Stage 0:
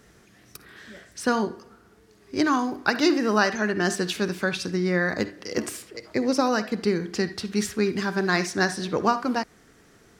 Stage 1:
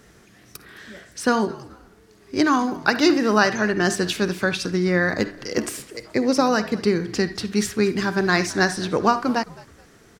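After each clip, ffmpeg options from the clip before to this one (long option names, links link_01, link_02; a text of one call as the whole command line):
ffmpeg -i in.wav -filter_complex "[0:a]asplit=3[link_01][link_02][link_03];[link_02]adelay=213,afreqshift=-85,volume=-21dB[link_04];[link_03]adelay=426,afreqshift=-170,volume=-30.9dB[link_05];[link_01][link_04][link_05]amix=inputs=3:normalize=0,volume=3.5dB" out.wav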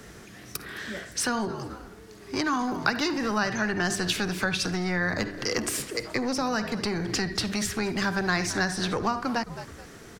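ffmpeg -i in.wav -filter_complex "[0:a]acrossover=split=150[link_01][link_02];[link_02]acompressor=threshold=-27dB:ratio=6[link_03];[link_01][link_03]amix=inputs=2:normalize=0,acrossover=split=700[link_04][link_05];[link_04]asoftclip=type=tanh:threshold=-32.5dB[link_06];[link_06][link_05]amix=inputs=2:normalize=0,volume=5.5dB" out.wav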